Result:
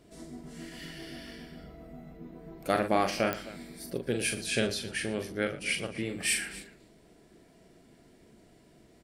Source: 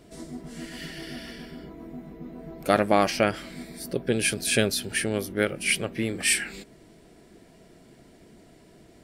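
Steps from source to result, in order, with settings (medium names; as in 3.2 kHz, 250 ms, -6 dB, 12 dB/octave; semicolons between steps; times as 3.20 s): 1.57–2.17 s: comb 1.5 ms, depth 54%; 4.32–6.09 s: low-pass 8 kHz 12 dB/octave; multi-tap echo 42/116/261 ms -6.5/-16/-17.5 dB; clicks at 3.33 s, -8 dBFS; trim -6.5 dB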